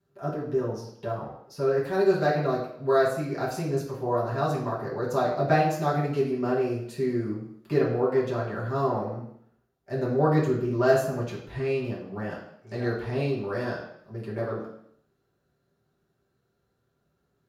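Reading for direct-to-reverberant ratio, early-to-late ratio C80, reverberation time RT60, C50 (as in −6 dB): −8.5 dB, 8.5 dB, 0.70 s, 5.0 dB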